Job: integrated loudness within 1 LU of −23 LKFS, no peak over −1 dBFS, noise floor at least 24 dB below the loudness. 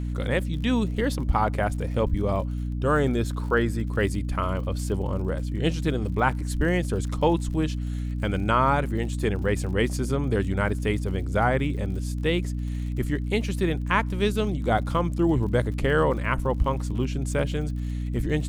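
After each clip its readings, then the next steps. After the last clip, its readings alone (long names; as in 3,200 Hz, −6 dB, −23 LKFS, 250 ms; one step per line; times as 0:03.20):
crackle rate 57 per second; mains hum 60 Hz; hum harmonics up to 300 Hz; level of the hum −26 dBFS; integrated loudness −26.0 LKFS; sample peak −8.0 dBFS; target loudness −23.0 LKFS
→ click removal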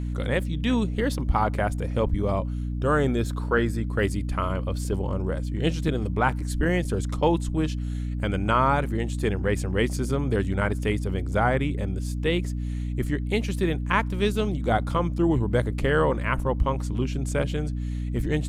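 crackle rate 0.22 per second; mains hum 60 Hz; hum harmonics up to 300 Hz; level of the hum −26 dBFS
→ hum removal 60 Hz, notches 5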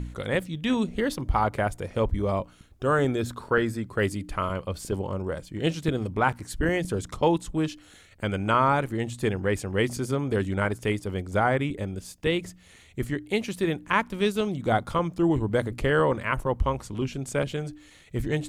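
mains hum none found; integrated loudness −27.0 LKFS; sample peak −8.5 dBFS; target loudness −23.0 LKFS
→ level +4 dB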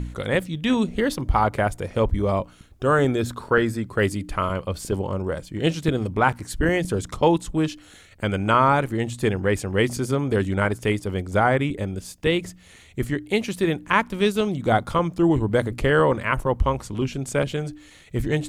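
integrated loudness −23.0 LKFS; sample peak −4.5 dBFS; background noise floor −49 dBFS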